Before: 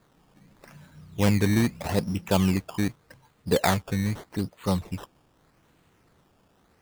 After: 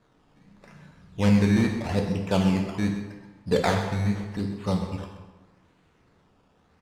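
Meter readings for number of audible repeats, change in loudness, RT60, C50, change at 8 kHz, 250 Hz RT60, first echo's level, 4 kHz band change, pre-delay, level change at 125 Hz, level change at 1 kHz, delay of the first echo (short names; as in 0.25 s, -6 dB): 1, +0.5 dB, 1.2 s, 5.0 dB, -6.0 dB, 1.2 s, -12.5 dB, -2.0 dB, 3 ms, +1.0 dB, -0.5 dB, 0.129 s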